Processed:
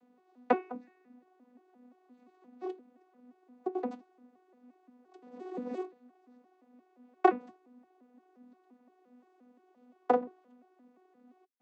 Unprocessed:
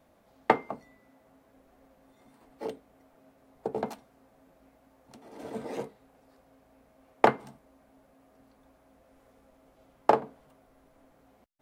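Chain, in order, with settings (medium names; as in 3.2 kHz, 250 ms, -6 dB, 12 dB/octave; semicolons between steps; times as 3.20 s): vocoder on a broken chord bare fifth, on B3, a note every 174 ms; trim -2 dB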